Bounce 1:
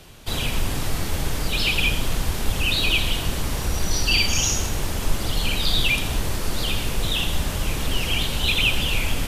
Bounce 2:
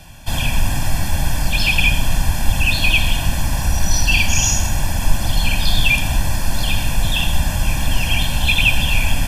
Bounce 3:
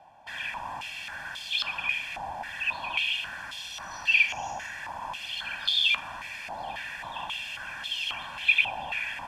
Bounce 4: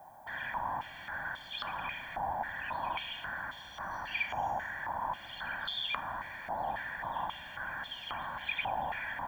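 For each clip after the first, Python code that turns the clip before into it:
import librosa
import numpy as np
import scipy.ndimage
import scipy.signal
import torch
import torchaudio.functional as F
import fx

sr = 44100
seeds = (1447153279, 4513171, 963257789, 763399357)

y1 = fx.notch(x, sr, hz=3900.0, q=6.0)
y1 = y1 + 0.9 * np.pad(y1, (int(1.2 * sr / 1000.0), 0))[:len(y1)]
y1 = F.gain(torch.from_numpy(y1), 2.0).numpy()
y2 = fx.filter_held_bandpass(y1, sr, hz=3.7, low_hz=800.0, high_hz=3400.0)
y3 = scipy.signal.savgol_filter(y2, 41, 4, mode='constant')
y3 = fx.dmg_noise_colour(y3, sr, seeds[0], colour='violet', level_db=-71.0)
y3 = F.gain(torch.from_numpy(y3), 1.5).numpy()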